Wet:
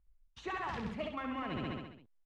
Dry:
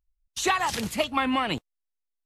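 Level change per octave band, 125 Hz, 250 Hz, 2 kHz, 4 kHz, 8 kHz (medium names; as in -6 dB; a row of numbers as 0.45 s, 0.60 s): -4.5 dB, -10.0 dB, -13.5 dB, -18.0 dB, under -30 dB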